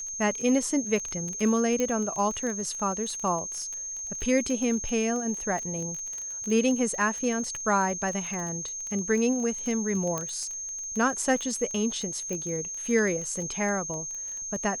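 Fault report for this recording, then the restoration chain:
crackle 23 per s -31 dBFS
whine 6.4 kHz -33 dBFS
1.80 s: pop -15 dBFS
10.18 s: pop -16 dBFS
12.33 s: pop -20 dBFS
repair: de-click; band-stop 6.4 kHz, Q 30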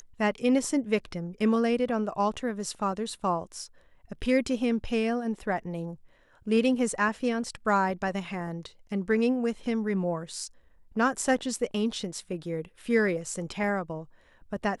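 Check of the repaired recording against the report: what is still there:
12.33 s: pop

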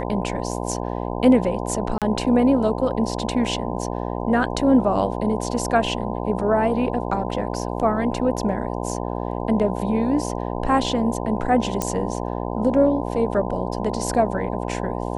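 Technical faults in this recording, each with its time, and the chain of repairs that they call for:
buzz 60 Hz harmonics 17 -27 dBFS
1.98–2.02 s: dropout 37 ms
11.82 s: pop -9 dBFS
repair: de-click; de-hum 60 Hz, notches 17; interpolate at 1.98 s, 37 ms

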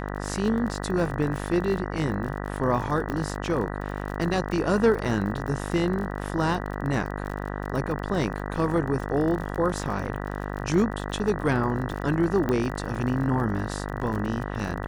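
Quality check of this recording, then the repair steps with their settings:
buzz 50 Hz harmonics 39 -32 dBFS
crackle 41 per s -32 dBFS
3.10 s: pop -18 dBFS
12.49 s: pop -15 dBFS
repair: de-click; de-hum 50 Hz, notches 39

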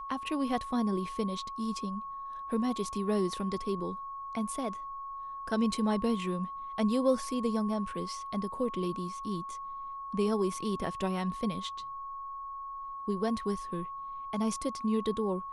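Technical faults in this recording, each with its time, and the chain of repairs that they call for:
whine 1.1 kHz -38 dBFS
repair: band-stop 1.1 kHz, Q 30

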